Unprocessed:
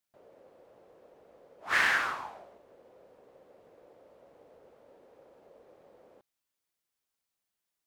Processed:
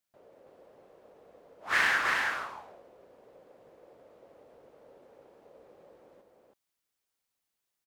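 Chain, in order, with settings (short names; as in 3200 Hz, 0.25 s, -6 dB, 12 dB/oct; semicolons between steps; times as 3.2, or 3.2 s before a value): echo 0.326 s -4 dB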